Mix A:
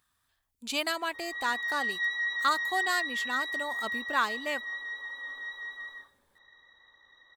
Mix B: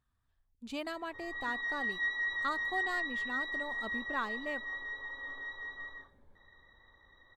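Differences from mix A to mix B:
speech −8.0 dB
master: add spectral tilt −3.5 dB per octave

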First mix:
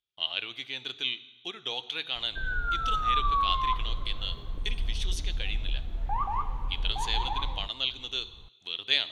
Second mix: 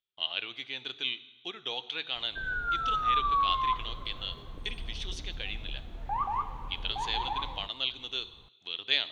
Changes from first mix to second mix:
speech: add high-frequency loss of the air 88 metres
master: add low-shelf EQ 81 Hz −11.5 dB

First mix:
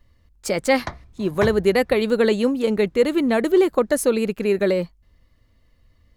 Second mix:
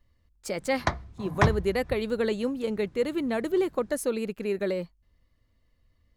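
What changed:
speech −9.0 dB
background +4.5 dB

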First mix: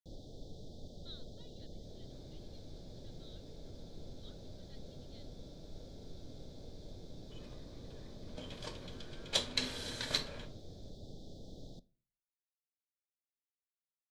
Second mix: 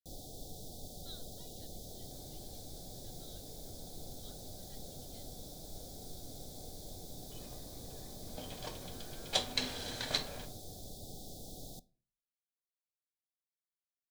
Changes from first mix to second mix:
speech: send on
first sound: remove high-frequency loss of the air 200 metres
master: add parametric band 750 Hz +11.5 dB 0.24 octaves

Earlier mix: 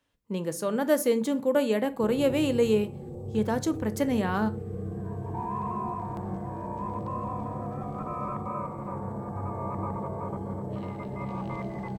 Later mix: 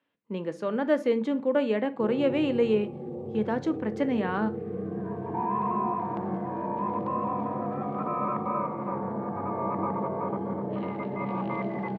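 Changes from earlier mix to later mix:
background +5.5 dB
master: add Chebyshev band-pass filter 220–2,600 Hz, order 2

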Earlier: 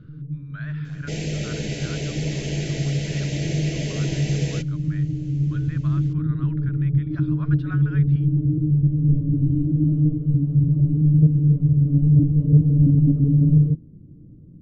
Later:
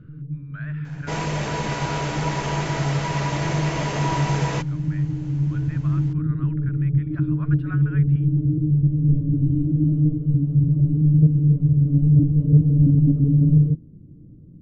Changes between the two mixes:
speech: add flat-topped bell 4,700 Hz −10 dB 1.2 octaves
second sound: remove Butterworth band-reject 1,100 Hz, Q 0.61

